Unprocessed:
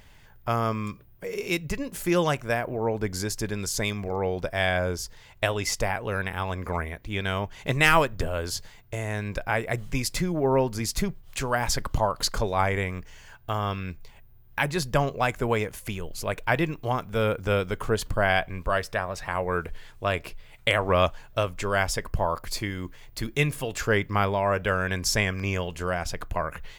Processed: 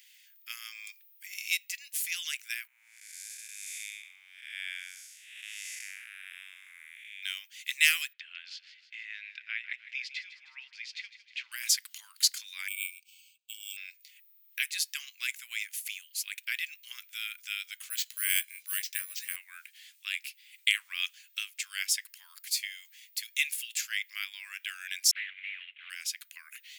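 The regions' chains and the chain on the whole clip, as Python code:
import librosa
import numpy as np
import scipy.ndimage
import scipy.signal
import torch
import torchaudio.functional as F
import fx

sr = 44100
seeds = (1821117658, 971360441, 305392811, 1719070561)

y = fx.chain(x, sr, fx.spec_blur(span_ms=296.0),
    fx.lowpass(hz=10000.0, slope=12),
    fx.peak_eq(hz=4900.0, db=-11.5, octaves=0.85), at=(2.67, 7.23))
y = fx.chain(y, sr, fx.lowpass(hz=3400.0, slope=24),
    fx.echo_feedback(ms=156, feedback_pct=56, wet_db=-14), at=(8.13, 11.52))
y = fx.chain(y, sr, fx.brickwall_highpass(low_hz=2200.0),
    fx.resample_bad(factor=4, down='filtered', up='hold'),
    fx.band_widen(depth_pct=40), at=(12.68, 13.77))
y = fx.chain(y, sr, fx.resample_bad(factor=4, down='none', up='hold'),
    fx.doubler(ms=16.0, db=-12), at=(17.9, 19.36))
y = fx.chain(y, sr, fx.cvsd(bps=16000),
    fx.transient(attack_db=3, sustain_db=-3),
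    fx.doppler_dist(depth_ms=0.34), at=(25.11, 25.9))
y = scipy.signal.sosfilt(scipy.signal.butter(6, 2100.0, 'highpass', fs=sr, output='sos'), y)
y = fx.high_shelf(y, sr, hz=7600.0, db=7.5)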